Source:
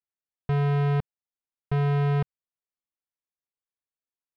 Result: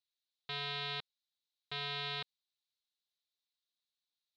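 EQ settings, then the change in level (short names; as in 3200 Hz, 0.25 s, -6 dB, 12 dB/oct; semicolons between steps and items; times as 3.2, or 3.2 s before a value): band-pass 3900 Hz, Q 6.2; +16.5 dB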